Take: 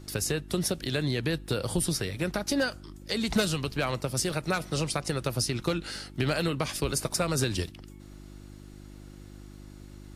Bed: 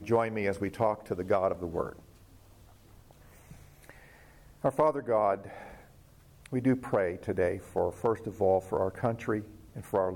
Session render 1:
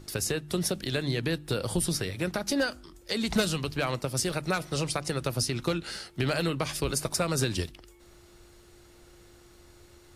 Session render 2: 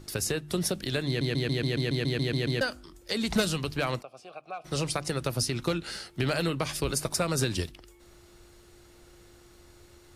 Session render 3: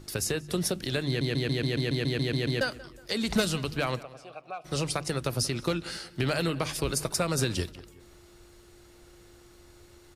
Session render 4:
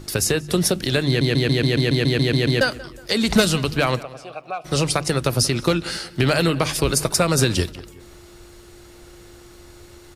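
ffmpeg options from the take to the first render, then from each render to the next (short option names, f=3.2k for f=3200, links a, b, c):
-af "bandreject=f=50:t=h:w=4,bandreject=f=100:t=h:w=4,bandreject=f=150:t=h:w=4,bandreject=f=200:t=h:w=4,bandreject=f=250:t=h:w=4,bandreject=f=300:t=h:w=4"
-filter_complex "[0:a]asplit=3[a][b][c];[a]afade=t=out:st=4.01:d=0.02[d];[b]asplit=3[e][f][g];[e]bandpass=f=730:t=q:w=8,volume=0dB[h];[f]bandpass=f=1.09k:t=q:w=8,volume=-6dB[i];[g]bandpass=f=2.44k:t=q:w=8,volume=-9dB[j];[h][i][j]amix=inputs=3:normalize=0,afade=t=in:st=4.01:d=0.02,afade=t=out:st=4.64:d=0.02[k];[c]afade=t=in:st=4.64:d=0.02[l];[d][k][l]amix=inputs=3:normalize=0,asplit=12[m][n][o][p][q][r][s][t][u][v][w][x];[m]atrim=end=1.212[y];[n]atrim=start=1.068:end=1.212[z];[o]atrim=start=1.068:end=1.212[aa];[p]atrim=start=1.068:end=1.212[ab];[q]atrim=start=1.068:end=1.212[ac];[r]atrim=start=1.068:end=1.212[ad];[s]atrim=start=1.068:end=1.212[ae];[t]atrim=start=1.068:end=1.212[af];[u]atrim=start=1.068:end=1.212[ag];[v]atrim=start=1.068:end=1.212[ah];[w]atrim=start=1.068:end=1.212[ai];[x]atrim=start=2.608[aj];[y][z]acrossfade=d=0.004:c1=hsin:c2=hsin[ak];[ak][aa]acrossfade=d=0.004:c1=hsin:c2=hsin[al];[al][ab]acrossfade=d=0.004:c1=hsin:c2=hsin[am];[am][ac]acrossfade=d=0.004:c1=hsin:c2=hsin[an];[an][ad]acrossfade=d=0.004:c1=hsin:c2=hsin[ao];[ao][ae]acrossfade=d=0.004:c1=hsin:c2=hsin[ap];[ap][af]acrossfade=d=0.004:c1=hsin:c2=hsin[aq];[aq][ag]acrossfade=d=0.004:c1=hsin:c2=hsin[ar];[ar][ah]acrossfade=d=0.004:c1=hsin:c2=hsin[as];[as][ai]acrossfade=d=0.004:c1=hsin:c2=hsin[at];[at][aj]acrossfade=d=0.004:c1=hsin:c2=hsin"
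-filter_complex "[0:a]asplit=2[a][b];[b]adelay=183,lowpass=f=3.6k:p=1,volume=-19dB,asplit=2[c][d];[d]adelay=183,lowpass=f=3.6k:p=1,volume=0.44,asplit=2[e][f];[f]adelay=183,lowpass=f=3.6k:p=1,volume=0.44[g];[a][c][e][g]amix=inputs=4:normalize=0"
-af "volume=9.5dB"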